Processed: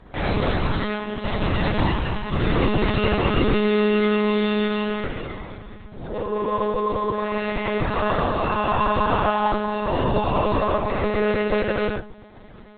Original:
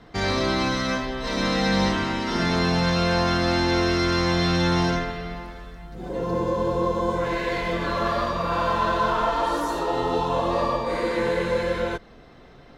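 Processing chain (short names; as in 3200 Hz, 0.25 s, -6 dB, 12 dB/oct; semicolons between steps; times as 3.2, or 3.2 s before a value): 4.63–7.33 low shelf 460 Hz -4 dB; reverb RT60 0.35 s, pre-delay 4 ms, DRR 2.5 dB; dynamic EQ 2700 Hz, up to +6 dB, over -51 dBFS, Q 7.9; monotone LPC vocoder at 8 kHz 210 Hz; Opus 20 kbps 48000 Hz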